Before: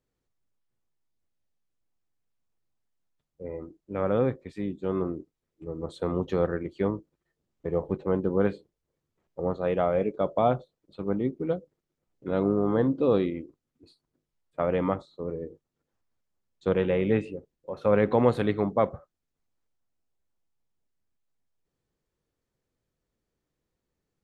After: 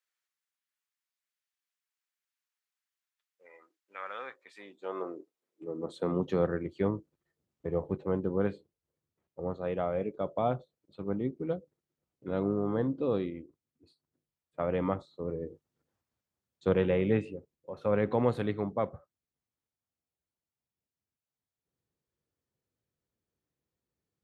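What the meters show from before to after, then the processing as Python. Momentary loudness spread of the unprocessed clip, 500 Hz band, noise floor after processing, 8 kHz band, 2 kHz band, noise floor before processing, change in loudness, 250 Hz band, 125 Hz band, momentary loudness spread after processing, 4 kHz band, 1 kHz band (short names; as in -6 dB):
16 LU, -5.5 dB, under -85 dBFS, n/a, -4.5 dB, -84 dBFS, -5.0 dB, -5.0 dB, -4.0 dB, 17 LU, -4.5 dB, -6.0 dB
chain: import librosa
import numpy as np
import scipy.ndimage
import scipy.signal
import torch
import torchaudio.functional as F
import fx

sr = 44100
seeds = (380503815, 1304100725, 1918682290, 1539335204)

y = fx.rider(x, sr, range_db=5, speed_s=2.0)
y = fx.filter_sweep_highpass(y, sr, from_hz=1600.0, to_hz=78.0, start_s=4.14, end_s=6.76, q=1.2)
y = F.gain(torch.from_numpy(y), -5.0).numpy()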